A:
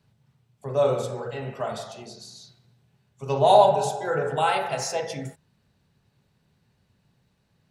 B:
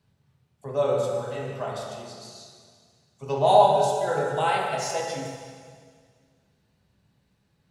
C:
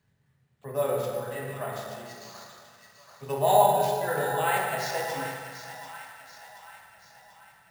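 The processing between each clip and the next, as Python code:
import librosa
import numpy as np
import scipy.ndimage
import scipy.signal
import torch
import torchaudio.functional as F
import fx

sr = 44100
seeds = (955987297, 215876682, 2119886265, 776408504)

y1 = fx.rev_plate(x, sr, seeds[0], rt60_s=1.9, hf_ratio=1.0, predelay_ms=0, drr_db=1.5)
y1 = y1 * librosa.db_to_amplitude(-3.0)
y2 = fx.peak_eq(y1, sr, hz=1800.0, db=10.5, octaves=0.38)
y2 = fx.echo_split(y2, sr, split_hz=850.0, low_ms=102, high_ms=735, feedback_pct=52, wet_db=-10.0)
y2 = np.repeat(y2[::4], 4)[:len(y2)]
y2 = y2 * librosa.db_to_amplitude(-3.5)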